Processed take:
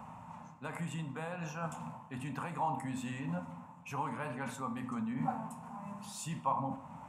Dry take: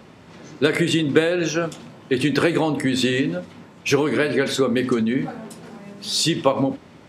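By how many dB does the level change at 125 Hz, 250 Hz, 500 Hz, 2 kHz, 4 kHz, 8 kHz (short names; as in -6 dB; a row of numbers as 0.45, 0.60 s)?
-13.0, -18.5, -25.0, -20.5, -28.5, -18.5 dB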